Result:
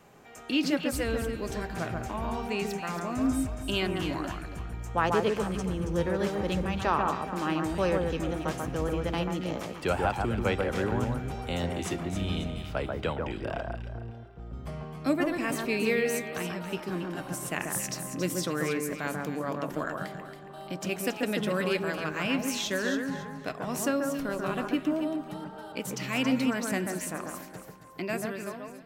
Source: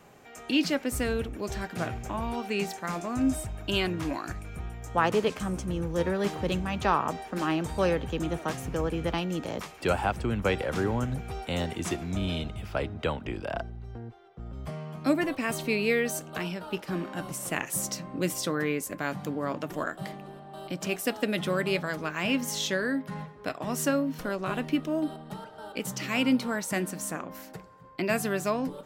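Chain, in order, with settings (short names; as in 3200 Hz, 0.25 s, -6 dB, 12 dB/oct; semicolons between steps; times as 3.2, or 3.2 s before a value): ending faded out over 1.13 s; echo with dull and thin repeats by turns 0.138 s, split 1800 Hz, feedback 55%, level -3 dB; gain -2 dB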